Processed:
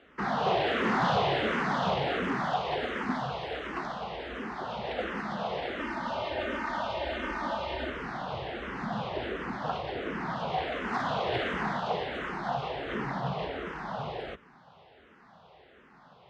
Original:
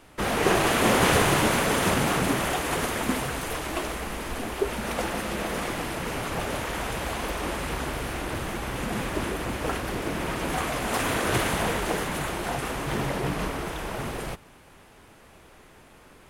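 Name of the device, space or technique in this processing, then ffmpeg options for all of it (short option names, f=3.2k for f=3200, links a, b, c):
barber-pole phaser into a guitar amplifier: -filter_complex "[0:a]asplit=2[a][b];[b]afreqshift=-1.4[c];[a][c]amix=inputs=2:normalize=1,asoftclip=type=tanh:threshold=-19dB,highpass=97,equalizer=f=100:t=q:w=4:g=-8,equalizer=f=310:t=q:w=4:g=-7,equalizer=f=750:t=q:w=4:g=4,equalizer=f=2.4k:t=q:w=4:g=-6,lowpass=f=4k:w=0.5412,lowpass=f=4k:w=1.3066,asettb=1/sr,asplit=3[d][e][f];[d]atrim=end=5.794[g];[e]atrim=start=5.79:end=7.9,asetpts=PTS-STARTPTS,afade=t=in:d=0.004:c=qsin,afade=t=out:st=2.106:d=0.004:c=qsin,aecho=1:1:3.3:0.79,atrim=end_sample=93051[h];[f]atrim=start=7.896[i];[g][h]acrossfade=d=0.004:c1=hsin:c2=qsin[j];[j][i]acrossfade=d=0.004:c1=qsin:c2=hsin"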